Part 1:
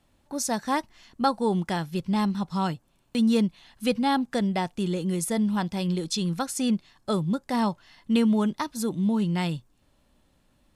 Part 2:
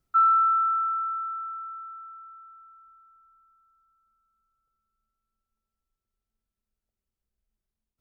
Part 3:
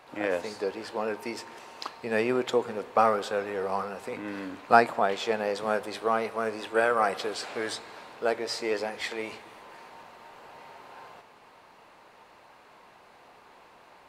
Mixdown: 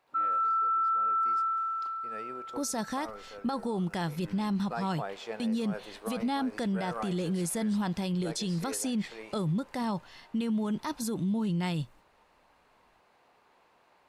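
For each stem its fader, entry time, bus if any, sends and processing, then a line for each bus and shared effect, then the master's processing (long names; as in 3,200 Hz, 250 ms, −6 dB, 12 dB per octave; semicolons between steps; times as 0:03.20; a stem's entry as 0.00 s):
+2.5 dB, 2.25 s, no send, noise gate −53 dBFS, range −13 dB; brickwall limiter −20.5 dBFS, peak gain reduction 10 dB
−7.5 dB, 0.00 s, no send, high-pass filter 1,300 Hz; automatic gain control gain up to 16 dB
0:03.88 −18 dB → 0:04.36 −10.5 dB, 0.00 s, no send, no processing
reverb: not used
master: brickwall limiter −24 dBFS, peak gain reduction 9 dB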